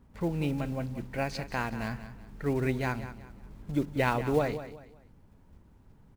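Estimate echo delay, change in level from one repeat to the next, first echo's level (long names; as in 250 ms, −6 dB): 186 ms, −10.0 dB, −12.5 dB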